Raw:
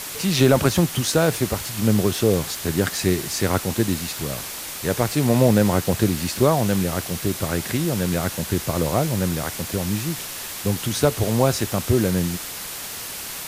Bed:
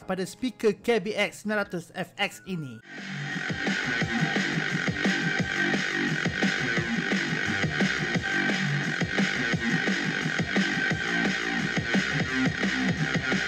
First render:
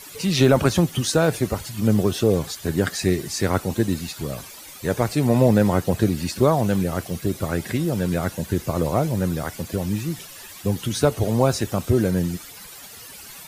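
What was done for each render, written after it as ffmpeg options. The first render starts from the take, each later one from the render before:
ffmpeg -i in.wav -af "afftdn=noise_reduction=13:noise_floor=-33" out.wav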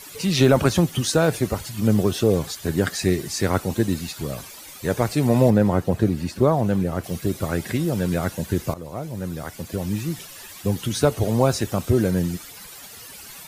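ffmpeg -i in.wav -filter_complex "[0:a]asettb=1/sr,asplit=3[link_01][link_02][link_03];[link_01]atrim=end=5.504[link_04];[link_02]atrim=start=5.5:end=7.04,asetpts=PTS-STARTPTS,afade=type=in:duration=0.004:curve=qsin,afade=type=out:start_time=1.536:duration=0.004:curve=qsin,highshelf=frequency=2200:gain=-9[link_05];[link_03]atrim=start=7.036[link_06];[link_04][link_05]acrossfade=duration=0.004:curve1=hsin:curve2=qsin[link_07];[link_07][link_06]acrossfade=duration=0.004:curve1=qsin:curve2=hsin,asplit=2[link_08][link_09];[link_08]atrim=end=8.74,asetpts=PTS-STARTPTS,afade=type=out:start_time=8.736:duration=0.004:curve=hsin:silence=0.149624[link_10];[link_09]atrim=start=8.74,asetpts=PTS-STARTPTS,afade=type=in:duration=1.34:silence=0.149624[link_11];[link_10][link_11]concat=n=2:v=0:a=1" out.wav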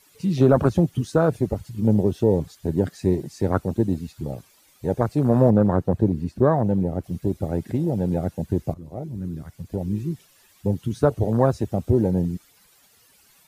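ffmpeg -i in.wav -af "afwtdn=0.0708" out.wav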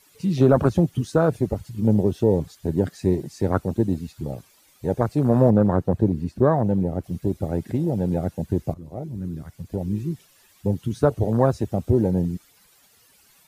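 ffmpeg -i in.wav -af anull out.wav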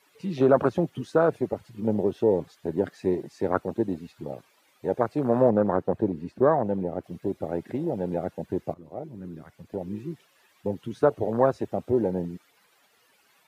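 ffmpeg -i in.wav -af "highpass=110,bass=frequency=250:gain=-11,treble=frequency=4000:gain=-12" out.wav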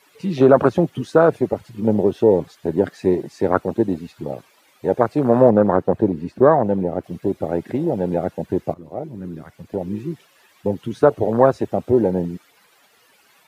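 ffmpeg -i in.wav -af "volume=7.5dB,alimiter=limit=-1dB:level=0:latency=1" out.wav

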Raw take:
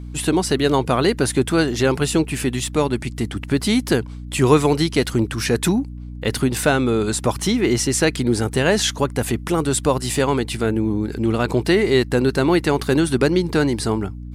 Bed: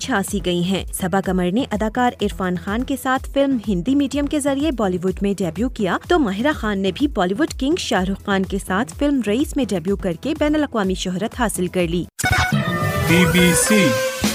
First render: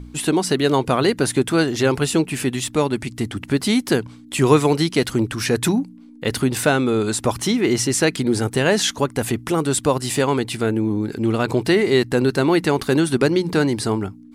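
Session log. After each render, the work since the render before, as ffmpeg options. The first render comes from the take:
ffmpeg -i in.wav -af "bandreject=frequency=60:width_type=h:width=4,bandreject=frequency=120:width_type=h:width=4,bandreject=frequency=180:width_type=h:width=4" out.wav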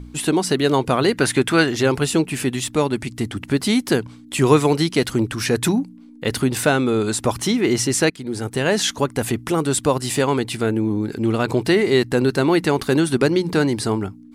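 ffmpeg -i in.wav -filter_complex "[0:a]asettb=1/sr,asplit=3[link_01][link_02][link_03];[link_01]atrim=end=1.134[link_04];[link_02]atrim=start=1.13:end=1.75,asetpts=PTS-STARTPTS,afade=type=in:duration=0.004:curve=qsin,afade=type=out:start_time=0.616:duration=0.004:curve=qsin,equalizer=frequency=2000:width=0.71:gain=7[link_05];[link_03]atrim=start=1.746[link_06];[link_04][link_05]acrossfade=duration=0.004:curve1=hsin:curve2=qsin[link_07];[link_07][link_06]acrossfade=duration=0.004:curve1=qsin:curve2=hsin,asplit=2[link_08][link_09];[link_08]atrim=end=8.1,asetpts=PTS-STARTPTS,afade=type=out:start_time=8.096:duration=0.004:curve=hsin:silence=0.149624[link_10];[link_09]atrim=start=8.1,asetpts=PTS-STARTPTS,afade=type=in:duration=1:curve=qsin:silence=0.149624[link_11];[link_10][link_11]concat=n=2:v=0:a=1" out.wav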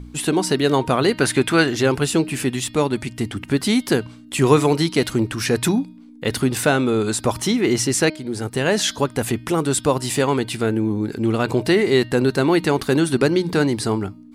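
ffmpeg -i in.wav -af "bandreject=frequency=309.9:width_type=h:width=4,bandreject=frequency=619.8:width_type=h:width=4,bandreject=frequency=929.7:width_type=h:width=4,bandreject=frequency=1239.6:width_type=h:width=4,bandreject=frequency=1549.5:width_type=h:width=4,bandreject=frequency=1859.4:width_type=h:width=4,bandreject=frequency=2169.3:width_type=h:width=4,bandreject=frequency=2479.2:width_type=h:width=4,bandreject=frequency=2789.1:width_type=h:width=4,bandreject=frequency=3099:width_type=h:width=4,bandreject=frequency=3408.9:width_type=h:width=4,bandreject=frequency=3718.8:width_type=h:width=4,bandreject=frequency=4028.7:width_type=h:width=4,bandreject=frequency=4338.6:width_type=h:width=4,bandreject=frequency=4648.5:width_type=h:width=4,bandreject=frequency=4958.4:width_type=h:width=4,bandreject=frequency=5268.3:width_type=h:width=4" out.wav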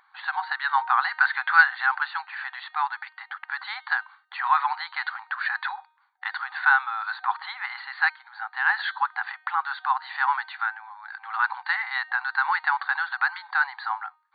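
ffmpeg -i in.wav -af "afftfilt=real='re*between(b*sr/4096,750,4600)':imag='im*between(b*sr/4096,750,4600)':win_size=4096:overlap=0.75,highshelf=frequency=2100:width_type=q:width=3:gain=-8" out.wav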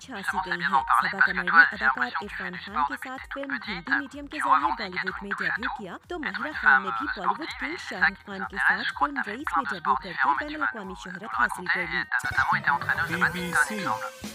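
ffmpeg -i in.wav -i bed.wav -filter_complex "[1:a]volume=-18.5dB[link_01];[0:a][link_01]amix=inputs=2:normalize=0" out.wav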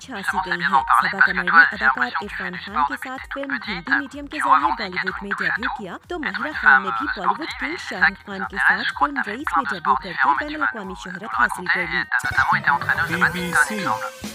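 ffmpeg -i in.wav -af "volume=5.5dB,alimiter=limit=-1dB:level=0:latency=1" out.wav

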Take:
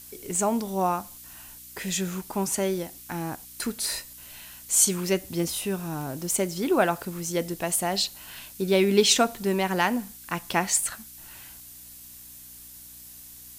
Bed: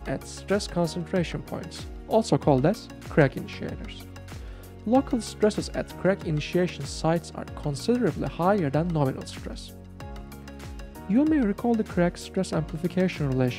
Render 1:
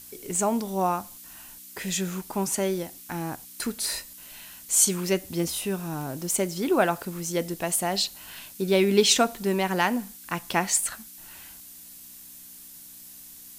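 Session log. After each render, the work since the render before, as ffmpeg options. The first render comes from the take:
ffmpeg -i in.wav -af "bandreject=frequency=60:width_type=h:width=4,bandreject=frequency=120:width_type=h:width=4" out.wav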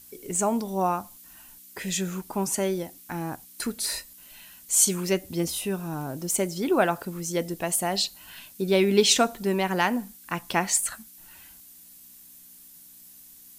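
ffmpeg -i in.wav -af "afftdn=noise_reduction=6:noise_floor=-46" out.wav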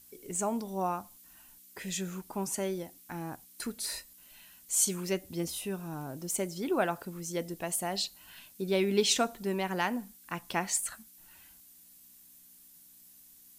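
ffmpeg -i in.wav -af "volume=-7dB" out.wav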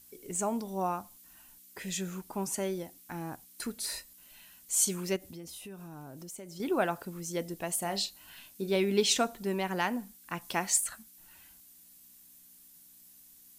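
ffmpeg -i in.wav -filter_complex "[0:a]asettb=1/sr,asplit=3[link_01][link_02][link_03];[link_01]atrim=end=5.164[link_04];[link_02]atrim=start=5.16:end=6.6,asetpts=PTS-STARTPTS,afade=type=in:duration=0.004:curve=qsin,afade=type=out:start_time=1.436:duration=0.004:curve=qsin,acompressor=threshold=-43dB:ratio=4:attack=3.2:release=140:knee=1:detection=peak[link_05];[link_03]atrim=start=6.596[link_06];[link_04][link_05]acrossfade=duration=0.004:curve1=hsin:curve2=qsin[link_07];[link_07][link_06]acrossfade=duration=0.004:curve1=qsin:curve2=hsin,asettb=1/sr,asplit=3[link_08][link_09][link_10];[link_08]atrim=end=7.794[link_11];[link_09]atrim=start=7.79:end=8.76,asetpts=PTS-STARTPTS,afade=type=in:duration=0.004:curve=qsin,afade=type=out:start_time=0.966:duration=0.004:curve=qsin,asplit=2[link_12][link_13];[link_13]adelay=30,volume=-10dB[link_14];[link_12][link_14]amix=inputs=2:normalize=0,atrim=end_sample=42777[link_15];[link_10]atrim=start=8.756[link_16];[link_11][link_15]acrossfade=duration=0.004:curve1=hsin:curve2=qsin[link_17];[link_17][link_16]acrossfade=duration=0.004:curve1=qsin:curve2=hsin,asettb=1/sr,asplit=3[link_18][link_19][link_20];[link_18]atrim=end=10.414[link_21];[link_19]atrim=start=10.41:end=10.84,asetpts=PTS-STARTPTS,afade=type=in:duration=0.004:curve=qsin,afade=type=out:start_time=0.426:duration=0.004:curve=qsin,bass=frequency=250:gain=-2,treble=frequency=4000:gain=4[link_22];[link_20]atrim=start=10.836[link_23];[link_21][link_22]acrossfade=duration=0.004:curve1=hsin:curve2=qsin[link_24];[link_24][link_23]acrossfade=duration=0.004:curve1=qsin:curve2=hsin" out.wav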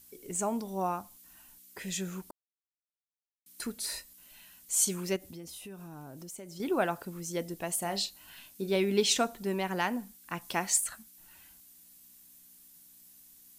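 ffmpeg -i in.wav -filter_complex "[0:a]asplit=3[link_01][link_02][link_03];[link_01]atrim=end=2.31,asetpts=PTS-STARTPTS,afade=type=out:start_time=2.306:duration=0.004:curve=hsin[link_04];[link_02]atrim=start=2.31:end=3.46,asetpts=PTS-STARTPTS,volume=0[link_05];[link_03]atrim=start=3.46,asetpts=PTS-STARTPTS,afade=type=in:duration=0.004:curve=hsin[link_06];[link_04][link_05][link_06]concat=n=3:v=0:a=1" out.wav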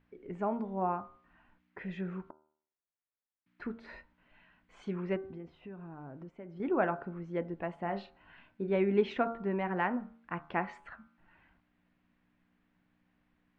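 ffmpeg -i in.wav -af "lowpass=frequency=2100:width=0.5412,lowpass=frequency=2100:width=1.3066,bandreject=frequency=76.74:width_type=h:width=4,bandreject=frequency=153.48:width_type=h:width=4,bandreject=frequency=230.22:width_type=h:width=4,bandreject=frequency=306.96:width_type=h:width=4,bandreject=frequency=383.7:width_type=h:width=4,bandreject=frequency=460.44:width_type=h:width=4,bandreject=frequency=537.18:width_type=h:width=4,bandreject=frequency=613.92:width_type=h:width=4,bandreject=frequency=690.66:width_type=h:width=4,bandreject=frequency=767.4:width_type=h:width=4,bandreject=frequency=844.14:width_type=h:width=4,bandreject=frequency=920.88:width_type=h:width=4,bandreject=frequency=997.62:width_type=h:width=4,bandreject=frequency=1074.36:width_type=h:width=4,bandreject=frequency=1151.1:width_type=h:width=4,bandreject=frequency=1227.84:width_type=h:width=4,bandreject=frequency=1304.58:width_type=h:width=4,bandreject=frequency=1381.32:width_type=h:width=4,bandreject=frequency=1458.06:width_type=h:width=4,bandreject=frequency=1534.8:width_type=h:width=4" out.wav

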